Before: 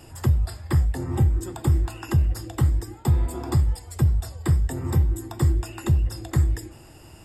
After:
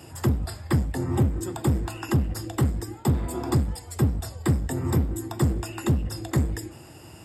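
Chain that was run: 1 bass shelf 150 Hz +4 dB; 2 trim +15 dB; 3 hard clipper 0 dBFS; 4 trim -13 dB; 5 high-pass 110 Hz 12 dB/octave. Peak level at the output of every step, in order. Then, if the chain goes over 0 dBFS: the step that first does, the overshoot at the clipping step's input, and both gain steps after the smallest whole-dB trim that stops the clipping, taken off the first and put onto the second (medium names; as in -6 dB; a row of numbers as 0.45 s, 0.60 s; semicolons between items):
-7.5 dBFS, +7.5 dBFS, 0.0 dBFS, -13.0 dBFS, -9.5 dBFS; step 2, 7.5 dB; step 2 +7 dB, step 4 -5 dB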